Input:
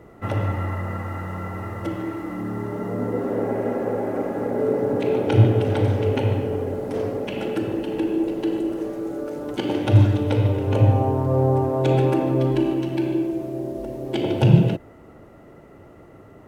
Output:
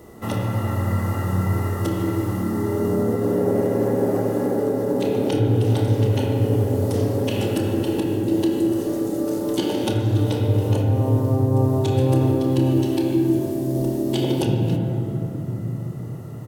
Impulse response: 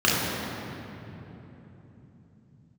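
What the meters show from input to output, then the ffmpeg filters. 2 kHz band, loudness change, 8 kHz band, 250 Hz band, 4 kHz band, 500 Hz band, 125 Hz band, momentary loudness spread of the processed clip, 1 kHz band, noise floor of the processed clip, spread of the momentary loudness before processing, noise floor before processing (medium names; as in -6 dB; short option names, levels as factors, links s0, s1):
-1.0 dB, +1.0 dB, no reading, +2.5 dB, +3.5 dB, +1.0 dB, +1.0 dB, 5 LU, -1.5 dB, -30 dBFS, 12 LU, -47 dBFS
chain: -filter_complex "[0:a]acompressor=threshold=0.0708:ratio=6,aexciter=amount=3.8:drive=6.2:freq=3600,asplit=2[s0][s1];[s1]adelay=27,volume=0.282[s2];[s0][s2]amix=inputs=2:normalize=0,asplit=2[s3][s4];[1:a]atrim=start_sample=2205,lowpass=3500[s5];[s4][s5]afir=irnorm=-1:irlink=0,volume=0.1[s6];[s3][s6]amix=inputs=2:normalize=0"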